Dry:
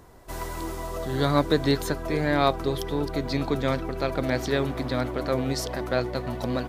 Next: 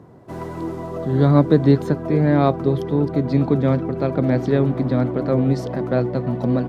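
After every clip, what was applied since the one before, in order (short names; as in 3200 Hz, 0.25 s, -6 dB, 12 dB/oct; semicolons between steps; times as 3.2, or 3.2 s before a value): HPF 130 Hz 24 dB/oct; tilt -4.5 dB/oct; gain +1 dB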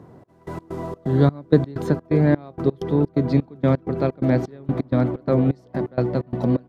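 step gate "xx..x.xx." 128 bpm -24 dB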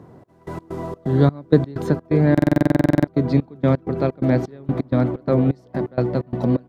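stuck buffer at 2.33, samples 2048, times 15; gain +1 dB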